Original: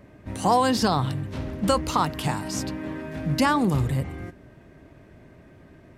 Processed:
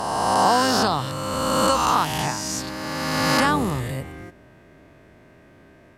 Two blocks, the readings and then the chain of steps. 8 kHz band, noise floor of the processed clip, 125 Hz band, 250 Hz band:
+7.5 dB, -51 dBFS, -2.5 dB, 0.0 dB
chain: spectral swells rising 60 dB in 2.33 s; low shelf 320 Hz -7.5 dB

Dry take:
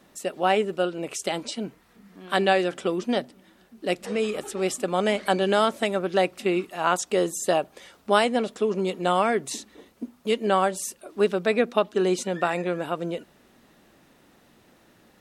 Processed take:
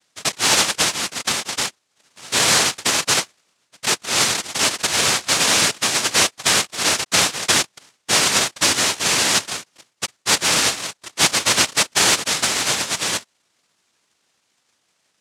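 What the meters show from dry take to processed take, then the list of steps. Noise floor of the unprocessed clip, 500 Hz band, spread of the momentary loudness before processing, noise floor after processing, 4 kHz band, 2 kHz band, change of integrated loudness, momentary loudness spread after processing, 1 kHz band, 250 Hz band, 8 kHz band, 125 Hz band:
-59 dBFS, -6.0 dB, 12 LU, -69 dBFS, +16.5 dB, +10.0 dB, +8.0 dB, 10 LU, +1.5 dB, -3.5 dB, +19.5 dB, +2.0 dB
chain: sample leveller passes 3; noise vocoder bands 1; gain -3.5 dB

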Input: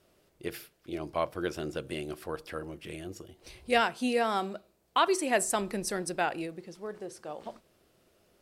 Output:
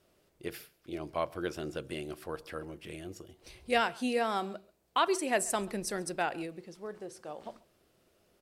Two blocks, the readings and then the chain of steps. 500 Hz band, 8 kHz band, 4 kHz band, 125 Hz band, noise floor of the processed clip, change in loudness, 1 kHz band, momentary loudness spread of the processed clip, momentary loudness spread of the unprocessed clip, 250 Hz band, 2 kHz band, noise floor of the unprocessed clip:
-2.5 dB, -2.5 dB, -2.5 dB, -2.5 dB, -71 dBFS, -2.5 dB, -2.5 dB, 16 LU, 16 LU, -2.5 dB, -2.5 dB, -68 dBFS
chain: echo 0.136 s -23.5 dB; gain -2.5 dB

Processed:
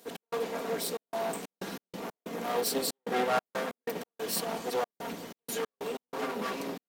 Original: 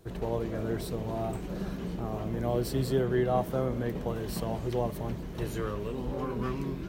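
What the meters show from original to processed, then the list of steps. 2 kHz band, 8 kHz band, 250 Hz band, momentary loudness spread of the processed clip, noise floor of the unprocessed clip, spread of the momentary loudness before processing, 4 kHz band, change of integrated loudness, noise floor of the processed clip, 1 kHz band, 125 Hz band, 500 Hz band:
+5.0 dB, +10.0 dB, -6.5 dB, 11 LU, -39 dBFS, 8 LU, +7.5 dB, -2.0 dB, under -85 dBFS, +2.5 dB, -17.5 dB, -2.0 dB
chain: minimum comb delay 4.3 ms; HPF 300 Hz 12 dB/oct; high shelf 2800 Hz +8.5 dB; step gate "x.xxxx.xx.x." 93 bpm -60 dB; gain +3 dB

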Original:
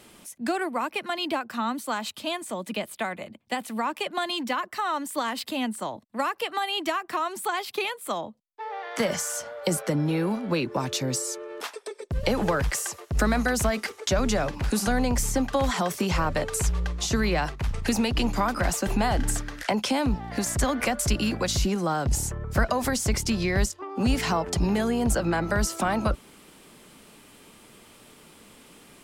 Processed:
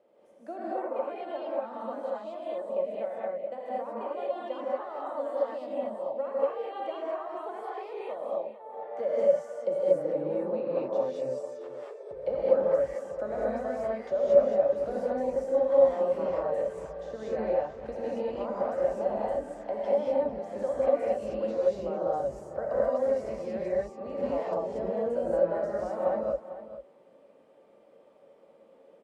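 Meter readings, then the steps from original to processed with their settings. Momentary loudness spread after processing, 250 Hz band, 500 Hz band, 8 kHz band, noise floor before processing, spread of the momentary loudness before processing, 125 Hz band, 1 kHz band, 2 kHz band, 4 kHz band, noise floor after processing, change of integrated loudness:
11 LU, -11.5 dB, +4.5 dB, under -30 dB, -53 dBFS, 8 LU, -19.5 dB, -7.0 dB, -17.5 dB, under -20 dB, -58 dBFS, -3.0 dB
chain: band-pass 550 Hz, Q 6.5; on a send: echo 0.448 s -13.5 dB; on the sum: non-linear reverb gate 0.26 s rising, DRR -7 dB

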